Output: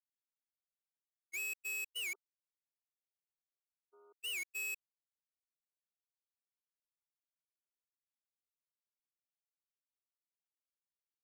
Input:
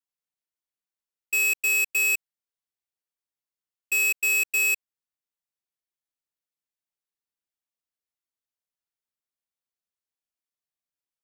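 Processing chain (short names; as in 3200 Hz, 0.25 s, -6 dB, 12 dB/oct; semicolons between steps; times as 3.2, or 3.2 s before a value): gate -22 dBFS, range -41 dB; 2.13–4.19 brick-wall FIR band-pass 240–1500 Hz; record warp 78 rpm, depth 250 cents; gain -1.5 dB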